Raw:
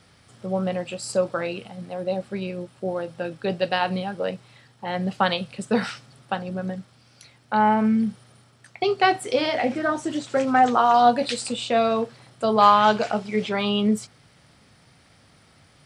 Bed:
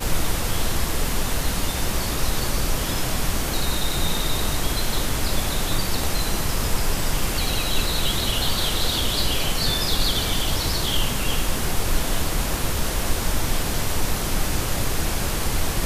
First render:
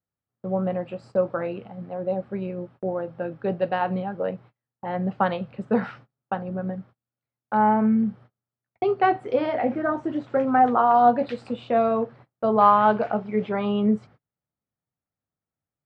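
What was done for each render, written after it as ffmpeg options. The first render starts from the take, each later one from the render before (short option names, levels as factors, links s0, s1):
-af "lowpass=1400,agate=range=0.0178:threshold=0.00562:ratio=16:detection=peak"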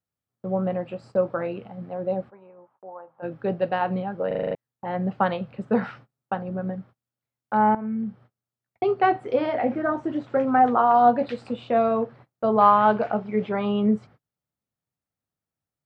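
-filter_complex "[0:a]asplit=3[s0][s1][s2];[s0]afade=t=out:st=2.29:d=0.02[s3];[s1]bandpass=f=950:t=q:w=4,afade=t=in:st=2.29:d=0.02,afade=t=out:st=3.22:d=0.02[s4];[s2]afade=t=in:st=3.22:d=0.02[s5];[s3][s4][s5]amix=inputs=3:normalize=0,asplit=9[s6][s7][s8][s9][s10][s11][s12][s13][s14];[s6]atrim=end=4.312[s15];[s7]atrim=start=4.268:end=4.312[s16];[s8]atrim=start=4.268:end=4.312[s17];[s9]atrim=start=4.268:end=4.312[s18];[s10]atrim=start=4.268:end=4.312[s19];[s11]atrim=start=4.268:end=4.312[s20];[s12]atrim=start=4.268:end=4.312[s21];[s13]atrim=start=4.548:end=7.75,asetpts=PTS-STARTPTS,afade=t=out:st=3.198:d=0.004:c=hsin:silence=0.199526[s22];[s14]atrim=start=7.75,asetpts=PTS-STARTPTS,afade=t=in:d=1.12:c=qsin:silence=0.199526[s23];[s15][s16]acrossfade=d=0.004:c1=hsin:c2=hsin[s24];[s24][s17]acrossfade=d=0.004:c1=hsin:c2=hsin[s25];[s25][s18]acrossfade=d=0.004:c1=hsin:c2=hsin[s26];[s26][s19]acrossfade=d=0.004:c1=hsin:c2=hsin[s27];[s27][s20]acrossfade=d=0.004:c1=hsin:c2=hsin[s28];[s28][s21]acrossfade=d=0.004:c1=hsin:c2=hsin[s29];[s22][s23]concat=n=2:v=0:a=1[s30];[s29][s30]acrossfade=d=0.004:c1=hsin:c2=hsin"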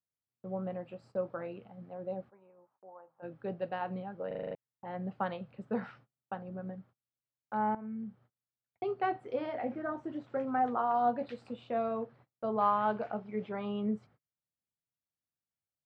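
-af "volume=0.251"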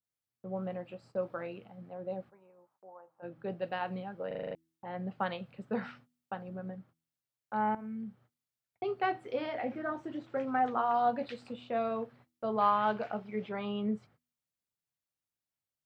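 -af "bandreject=f=81.41:t=h:w=4,bandreject=f=162.82:t=h:w=4,bandreject=f=244.23:t=h:w=4,bandreject=f=325.64:t=h:w=4,adynamicequalizer=threshold=0.00447:dfrequency=1700:dqfactor=0.7:tfrequency=1700:tqfactor=0.7:attack=5:release=100:ratio=0.375:range=4:mode=boostabove:tftype=highshelf"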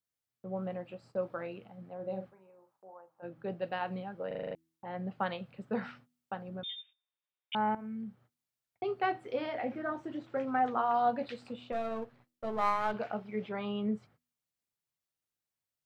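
-filter_complex "[0:a]asettb=1/sr,asplit=3[s0][s1][s2];[s0]atrim=end=1.954[s3];[s1]atrim=start=1.95:end=2.94,asetpts=PTS-STARTPTS,afade=t=in:d=0.004:c=qsin,afade=t=out:st=0.986:d=0.004:c=qsin,asplit=2[s4][s5];[s5]adelay=42,volume=0.398[s6];[s4][s6]amix=inputs=2:normalize=0,atrim=end_sample=43659[s7];[s2]atrim=start=2.936[s8];[s3][s7]acrossfade=d=0.004:c1=hsin:c2=qsin[s9];[s9][s8]acrossfade=d=0.004:c1=qsin:c2=hsin,asettb=1/sr,asplit=3[s10][s11][s12];[s10]atrim=end=6.634[s13];[s11]atrim=start=6.63:end=7.55,asetpts=PTS-STARTPTS,afade=t=in:d=0.004:c=qsin,afade=t=out:st=0.916:d=0.004:c=qsin,lowpass=f=3200:t=q:w=0.5098,lowpass=f=3200:t=q:w=0.6013,lowpass=f=3200:t=q:w=0.9,lowpass=f=3200:t=q:w=2.563,afreqshift=-3800[s14];[s12]atrim=start=7.546[s15];[s13][s14]acrossfade=d=0.004:c1=hsin:c2=qsin[s16];[s16][s15]acrossfade=d=0.004:c1=qsin:c2=hsin,asettb=1/sr,asplit=3[s17][s18][s19];[s17]atrim=end=11.724[s20];[s18]atrim=start=11.72:end=12.94,asetpts=PTS-STARTPTS,afade=t=in:d=0.004:c=qsin,afade=t=out:st=1.216:d=0.004:c=qsin,aeval=exprs='if(lt(val(0),0),0.447*val(0),val(0))':c=same[s21];[s19]atrim=start=12.936[s22];[s20][s21]acrossfade=d=0.004:c1=hsin:c2=qsin[s23];[s23][s22]acrossfade=d=0.004:c1=qsin:c2=hsin"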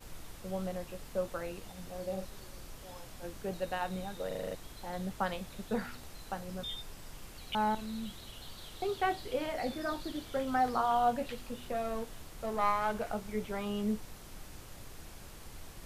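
-filter_complex "[1:a]volume=0.0531[s0];[0:a][s0]amix=inputs=2:normalize=0"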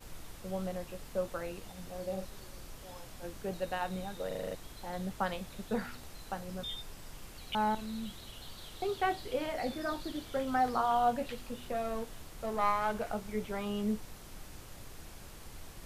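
-af anull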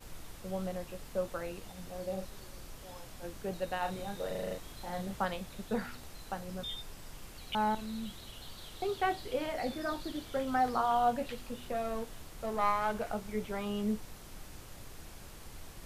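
-filter_complex "[0:a]asettb=1/sr,asplit=3[s0][s1][s2];[s0]atrim=end=3.794[s3];[s1]atrim=start=3.79:end=5.25,asetpts=PTS-STARTPTS,afade=t=in:d=0.004:c=qsin,afade=t=out:st=1.456:d=0.004:c=qsin,asplit=2[s4][s5];[s5]adelay=35,volume=0.562[s6];[s4][s6]amix=inputs=2:normalize=0,atrim=end_sample=64386[s7];[s2]atrim=start=5.246[s8];[s3][s7]acrossfade=d=0.004:c1=hsin:c2=qsin[s9];[s9][s8]acrossfade=d=0.004:c1=qsin:c2=hsin"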